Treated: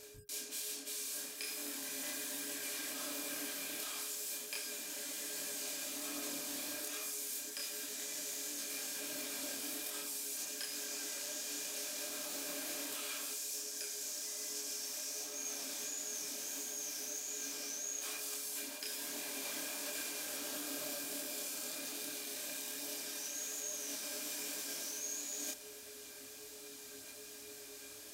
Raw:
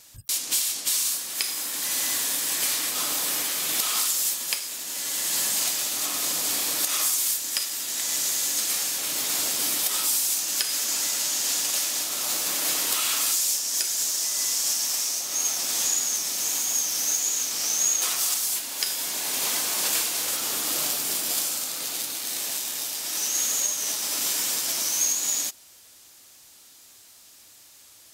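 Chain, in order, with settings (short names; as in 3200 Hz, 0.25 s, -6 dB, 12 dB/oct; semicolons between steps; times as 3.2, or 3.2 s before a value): reverse; compressor 5:1, threshold -41 dBFS, peak gain reduction 19 dB; reverse; whine 420 Hz -56 dBFS; small resonant body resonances 280/590/1600/2400 Hz, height 15 dB, ringing for 85 ms; chorus voices 2, 1.2 Hz, delay 27 ms, depth 3 ms; gain +2 dB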